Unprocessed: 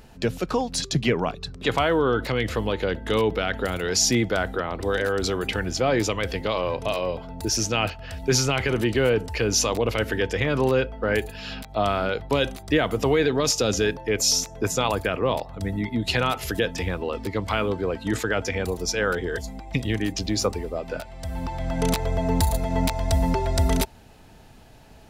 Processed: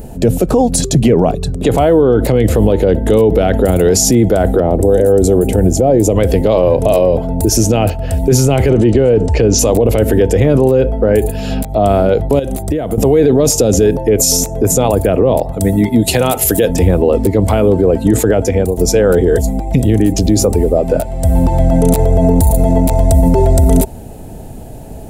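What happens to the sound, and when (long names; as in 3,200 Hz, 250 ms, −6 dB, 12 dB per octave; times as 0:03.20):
0:04.60–0:06.16: flat-topped bell 2,300 Hz −8.5 dB 2.6 octaves
0:08.69–0:09.59: low-pass filter 6,900 Hz 24 dB per octave
0:12.39–0:12.98: downward compressor 8 to 1, threshold −32 dBFS
0:15.52–0:16.69: spectral tilt +2 dB per octave
0:18.30–0:18.77: fade out linear, to −11.5 dB
whole clip: flat-topped bell 2,400 Hz −15.5 dB 2.9 octaves; boost into a limiter +21.5 dB; level −1 dB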